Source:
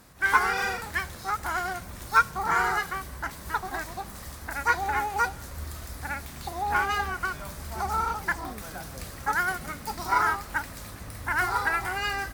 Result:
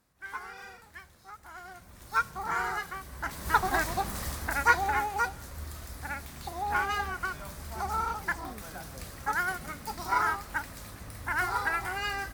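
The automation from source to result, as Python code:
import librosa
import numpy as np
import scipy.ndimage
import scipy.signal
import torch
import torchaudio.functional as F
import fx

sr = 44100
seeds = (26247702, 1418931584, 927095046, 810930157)

y = fx.gain(x, sr, db=fx.line((1.47, -18.0), (2.24, -6.5), (3.03, -6.5), (3.58, 5.5), (4.28, 5.5), (5.2, -3.5)))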